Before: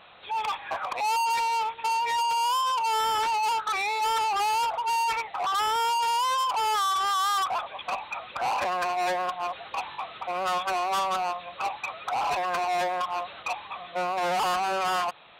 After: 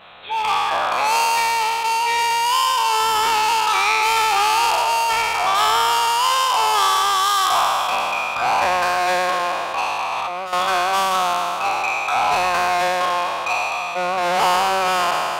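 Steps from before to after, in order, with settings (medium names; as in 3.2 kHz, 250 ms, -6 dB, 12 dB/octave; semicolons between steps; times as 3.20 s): spectral sustain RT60 2.94 s; 10.12–10.53 s: compressor with a negative ratio -31 dBFS, ratio -1; trim +5 dB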